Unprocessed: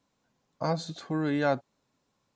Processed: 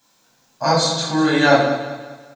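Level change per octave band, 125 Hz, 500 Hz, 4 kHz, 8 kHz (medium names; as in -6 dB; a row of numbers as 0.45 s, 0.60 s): +9.5 dB, +13.0 dB, +21.0 dB, +23.0 dB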